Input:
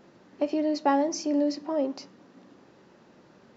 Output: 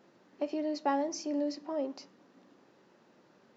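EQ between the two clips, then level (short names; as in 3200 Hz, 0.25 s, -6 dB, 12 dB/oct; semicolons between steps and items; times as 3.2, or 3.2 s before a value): HPF 200 Hz 6 dB/oct; -6.0 dB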